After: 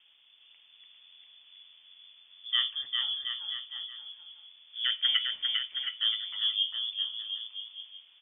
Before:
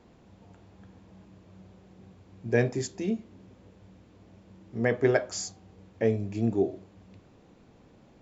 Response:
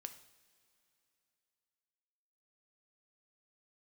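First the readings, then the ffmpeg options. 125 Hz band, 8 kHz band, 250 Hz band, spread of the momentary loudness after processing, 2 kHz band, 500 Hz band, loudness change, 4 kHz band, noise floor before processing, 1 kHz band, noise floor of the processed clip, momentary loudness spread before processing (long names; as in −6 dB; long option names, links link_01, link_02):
below −40 dB, can't be measured, below −40 dB, 17 LU, −3.0 dB, below −40 dB, −1.0 dB, +22.0 dB, −58 dBFS, −9.0 dB, −61 dBFS, 13 LU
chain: -af "equalizer=frequency=760:width=0.45:gain=6,aecho=1:1:400|720|976|1181|1345:0.631|0.398|0.251|0.158|0.1,lowpass=frequency=3100:width_type=q:width=0.5098,lowpass=frequency=3100:width_type=q:width=0.6013,lowpass=frequency=3100:width_type=q:width=0.9,lowpass=frequency=3100:width_type=q:width=2.563,afreqshift=-3600,volume=-8.5dB"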